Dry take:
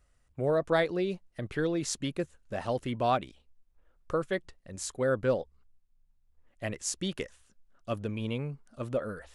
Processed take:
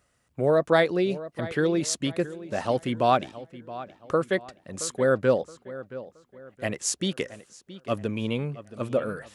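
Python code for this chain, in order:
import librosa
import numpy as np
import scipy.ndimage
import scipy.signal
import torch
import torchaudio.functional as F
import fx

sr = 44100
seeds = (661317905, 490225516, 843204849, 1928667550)

p1 = scipy.signal.sosfilt(scipy.signal.butter(2, 120.0, 'highpass', fs=sr, output='sos'), x)
p2 = p1 + fx.echo_filtered(p1, sr, ms=672, feedback_pct=37, hz=3600.0, wet_db=-15.5, dry=0)
y = p2 * librosa.db_to_amplitude(6.0)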